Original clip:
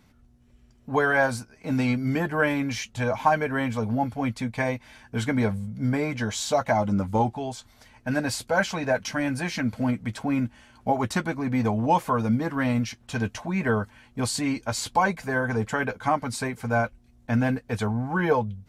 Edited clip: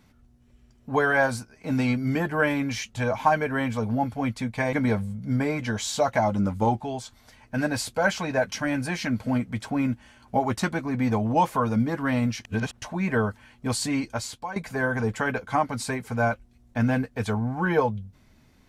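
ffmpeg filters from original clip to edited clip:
ffmpeg -i in.wav -filter_complex "[0:a]asplit=5[link_01][link_02][link_03][link_04][link_05];[link_01]atrim=end=4.732[link_06];[link_02]atrim=start=5.258:end=12.982[link_07];[link_03]atrim=start=12.978:end=13.352,asetpts=PTS-STARTPTS,areverse[link_08];[link_04]atrim=start=13.348:end=15.09,asetpts=PTS-STARTPTS,afade=type=out:start_time=1.302:duration=0.44:curve=qua:silence=0.199526[link_09];[link_05]atrim=start=15.09,asetpts=PTS-STARTPTS,afade=type=in:duration=0.004:curve=hsin:silence=0.199526[link_10];[link_06][link_07]acrossfade=duration=0.004:curve1=hsin:curve2=hsin[link_11];[link_11][link_08]acrossfade=duration=0.004:curve1=hsin:curve2=hsin[link_12];[link_09][link_10]concat=n=2:v=0:a=1[link_13];[link_12][link_13]acrossfade=duration=0.004:curve1=hsin:curve2=hsin" out.wav

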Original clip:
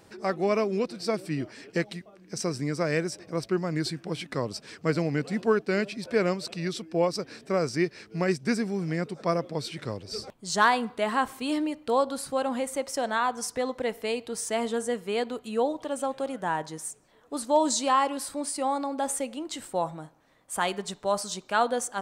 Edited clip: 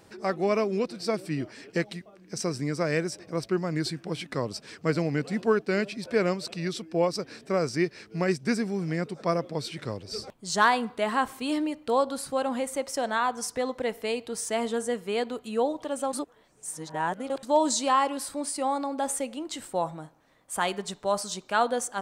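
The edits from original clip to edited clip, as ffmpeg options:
ffmpeg -i in.wav -filter_complex "[0:a]asplit=3[link_01][link_02][link_03];[link_01]atrim=end=16.132[link_04];[link_02]atrim=start=16.128:end=17.432,asetpts=PTS-STARTPTS,areverse[link_05];[link_03]atrim=start=17.428[link_06];[link_04][link_05]acrossfade=duration=0.004:curve1=hsin:curve2=hsin[link_07];[link_07][link_06]acrossfade=duration=0.004:curve1=hsin:curve2=hsin" out.wav

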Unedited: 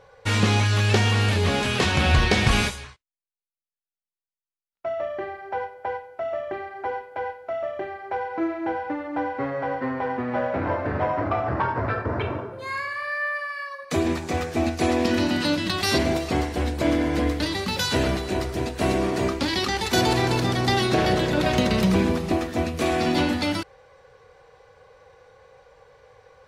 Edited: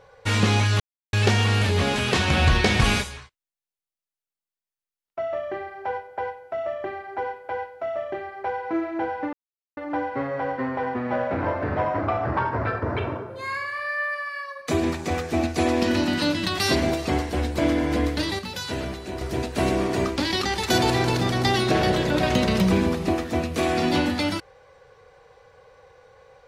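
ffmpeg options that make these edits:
ffmpeg -i in.wav -filter_complex "[0:a]asplit=5[link_01][link_02][link_03][link_04][link_05];[link_01]atrim=end=0.8,asetpts=PTS-STARTPTS,afade=type=out:start_time=0.796:duration=0.004:curve=hsin,apad=pad_dur=0.33[link_06];[link_02]atrim=start=0.8:end=9,asetpts=PTS-STARTPTS,afade=type=in:duration=0.004:curve=hsin,afade=type=out:start_time=8.196:duration=0.004:curve=hsin,apad=pad_dur=0.44[link_07];[link_03]atrim=start=9:end=17.622,asetpts=PTS-STARTPTS,afade=type=in:duration=0.004:curve=hsin[link_08];[link_04]atrim=start=17.618:end=18.442,asetpts=PTS-STARTPTS,volume=-7dB[link_09];[link_05]atrim=start=18.438[link_10];[link_06][link_07][link_08]concat=n=3:v=0:a=1[link_11];[link_11][link_09]acrossfade=duration=0.004:curve1=hsin:curve2=hsin[link_12];[link_12][link_10]acrossfade=duration=0.004:curve1=hsin:curve2=hsin" out.wav

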